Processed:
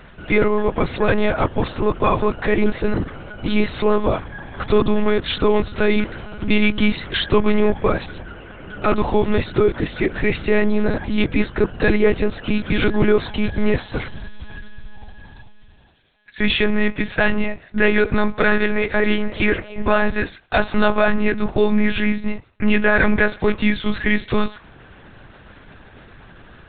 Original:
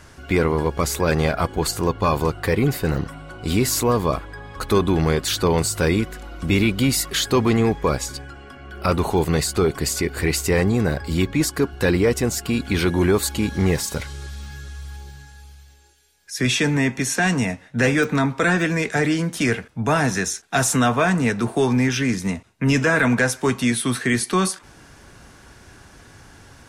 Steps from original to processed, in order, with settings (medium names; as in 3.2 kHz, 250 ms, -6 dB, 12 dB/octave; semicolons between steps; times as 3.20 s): band-stop 1.1 kHz, Q 28; 18.06–20.20 s: frequency-shifting echo 289 ms, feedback 52%, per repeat +130 Hz, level -18.5 dB; monotone LPC vocoder at 8 kHz 210 Hz; trim +3 dB